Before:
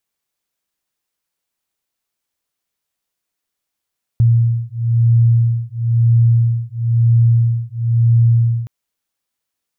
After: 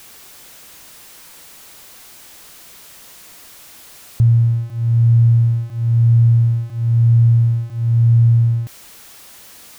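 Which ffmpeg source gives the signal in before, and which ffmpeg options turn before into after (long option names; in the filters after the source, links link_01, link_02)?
-f lavfi -i "aevalsrc='0.211*(sin(2*PI*116*t)+sin(2*PI*117*t))':duration=4.47:sample_rate=44100"
-af "aeval=exprs='val(0)+0.5*0.0178*sgn(val(0))':channel_layout=same"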